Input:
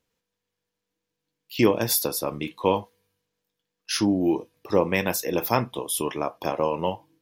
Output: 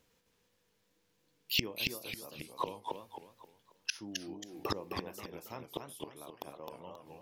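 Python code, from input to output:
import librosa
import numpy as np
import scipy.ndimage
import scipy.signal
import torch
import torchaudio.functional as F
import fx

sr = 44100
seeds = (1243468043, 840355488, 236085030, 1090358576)

y = fx.gate_flip(x, sr, shuts_db=-24.0, range_db=-30)
y = fx.echo_warbled(y, sr, ms=269, feedback_pct=36, rate_hz=2.8, cents=195, wet_db=-4.0)
y = F.gain(torch.from_numpy(y), 6.0).numpy()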